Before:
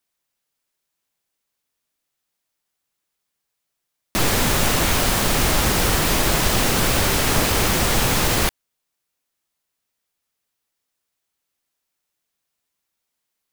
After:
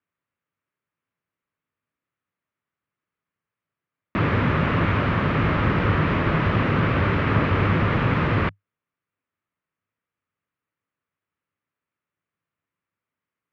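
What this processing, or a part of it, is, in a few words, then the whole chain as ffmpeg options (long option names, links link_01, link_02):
bass cabinet: -af "highpass=63,equalizer=frequency=100:width_type=q:width=4:gain=10,equalizer=frequency=160:width_type=q:width=4:gain=7,equalizer=frequency=270:width_type=q:width=4:gain=3,equalizer=frequency=770:width_type=q:width=4:gain=-7,equalizer=frequency=1200:width_type=q:width=4:gain=4,lowpass=frequency=2400:width=0.5412,lowpass=frequency=2400:width=1.3066,volume=-1.5dB"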